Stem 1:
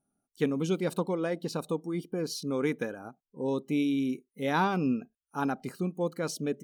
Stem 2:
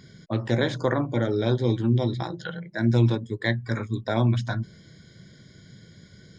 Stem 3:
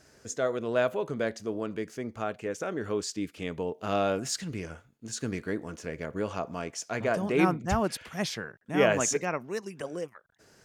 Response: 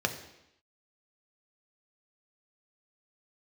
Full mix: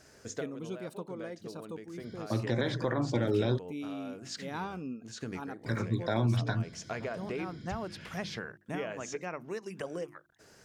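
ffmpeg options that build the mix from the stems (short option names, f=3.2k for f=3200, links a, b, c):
-filter_complex "[0:a]volume=-11.5dB,asplit=2[a][b];[1:a]bandreject=f=6.7k:w=5.7,adelay=2000,volume=-2dB,asplit=3[c][d][e];[c]atrim=end=3.59,asetpts=PTS-STARTPTS,afade=t=out:st=3.586:d=0.004:c=hsin[f];[d]atrim=start=3.59:end=5.66,asetpts=PTS-STARTPTS,volume=0[g];[e]atrim=start=5.66,asetpts=PTS-STARTPTS,afade=t=in:d=0.004:c=hsin[h];[f][g][h]concat=n=3:v=0:a=1[i];[2:a]acrossover=split=5500[j][k];[k]acompressor=threshold=-55dB:ratio=4:attack=1:release=60[l];[j][l]amix=inputs=2:normalize=0,bandreject=f=50:t=h:w=6,bandreject=f=100:t=h:w=6,bandreject=f=150:t=h:w=6,bandreject=f=200:t=h:w=6,bandreject=f=250:t=h:w=6,bandreject=f=300:t=h:w=6,bandreject=f=350:t=h:w=6,acompressor=threshold=-34dB:ratio=20,volume=1dB[m];[b]apad=whole_len=469284[n];[m][n]sidechaincompress=threshold=-47dB:ratio=4:attack=8.1:release=420[o];[a][i][o]amix=inputs=3:normalize=0,alimiter=limit=-19dB:level=0:latency=1:release=117"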